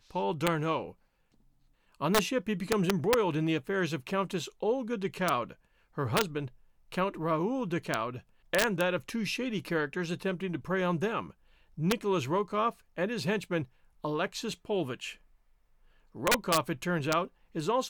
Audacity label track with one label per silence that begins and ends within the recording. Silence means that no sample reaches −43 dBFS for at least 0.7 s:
0.910000	2.010000	silence
15.130000	16.150000	silence